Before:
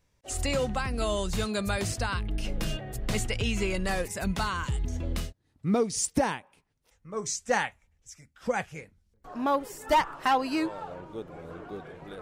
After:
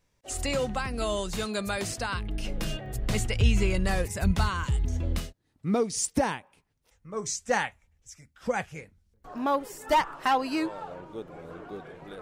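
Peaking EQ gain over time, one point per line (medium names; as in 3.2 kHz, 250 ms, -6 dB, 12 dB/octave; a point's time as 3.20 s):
peaking EQ 70 Hz 1.6 oct
-4 dB
from 1.21 s -10.5 dB
from 2.13 s -2.5 dB
from 2.86 s +5.5 dB
from 3.39 s +13 dB
from 4.50 s +4.5 dB
from 5.19 s -5.5 dB
from 6.18 s +2.5 dB
from 9.38 s -4.5 dB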